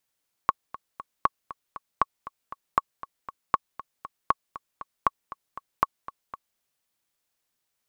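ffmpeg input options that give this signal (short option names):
-f lavfi -i "aevalsrc='pow(10,(-6-17*gte(mod(t,3*60/236),60/236))/20)*sin(2*PI*1110*mod(t,60/236))*exp(-6.91*mod(t,60/236)/0.03)':d=6.1:s=44100"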